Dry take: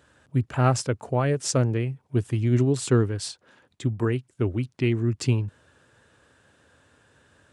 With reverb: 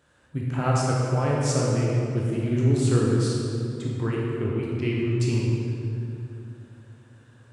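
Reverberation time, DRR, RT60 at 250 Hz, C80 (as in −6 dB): 2.8 s, −4.5 dB, 3.5 s, 0.0 dB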